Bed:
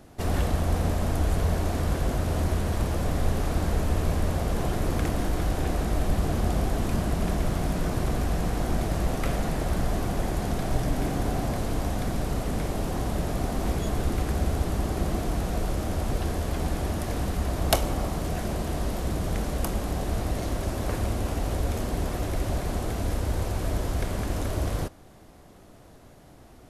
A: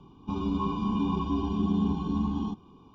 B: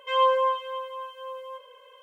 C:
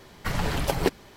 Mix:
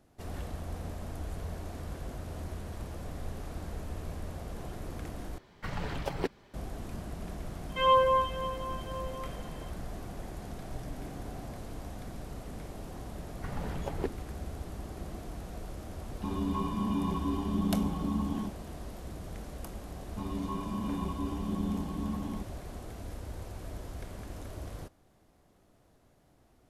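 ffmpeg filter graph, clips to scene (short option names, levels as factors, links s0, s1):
-filter_complex "[3:a]asplit=2[s0][s1];[1:a]asplit=2[s2][s3];[0:a]volume=0.2[s4];[s0]lowpass=f=3400:p=1[s5];[s1]lowpass=f=1000:p=1[s6];[s4]asplit=2[s7][s8];[s7]atrim=end=5.384[s9];[s5]atrim=end=1.16,asetpts=PTS-STARTPTS,volume=0.376[s10];[s8]atrim=start=6.536[s11];[2:a]atrim=end=2.02,asetpts=PTS-STARTPTS,volume=0.794,afade=t=in:d=0.004:c=hsin,afade=t=out:st=2.016:d=0.004:c=hsin,adelay=7690[s12];[s6]atrim=end=1.16,asetpts=PTS-STARTPTS,volume=0.335,afade=t=in:d=0.004:c=hsin,afade=t=out:st=1.156:d=0.004:c=hsin,adelay=13180[s13];[s2]atrim=end=2.94,asetpts=PTS-STARTPTS,volume=0.668,afade=t=in:d=0.004:c=hsin,afade=t=out:st=2.936:d=0.004:c=hsin,adelay=15950[s14];[s3]atrim=end=2.94,asetpts=PTS-STARTPTS,volume=0.447,afade=t=in:d=0.004:c=hsin,afade=t=out:st=2.936:d=0.004:c=hsin,adelay=19890[s15];[s9][s10]acrossfade=d=0.004:c1=hsin:c2=hsin[s16];[s16][s11]acrossfade=d=0.004:c1=hsin:c2=hsin[s17];[s17][s12][s13][s14][s15]amix=inputs=5:normalize=0"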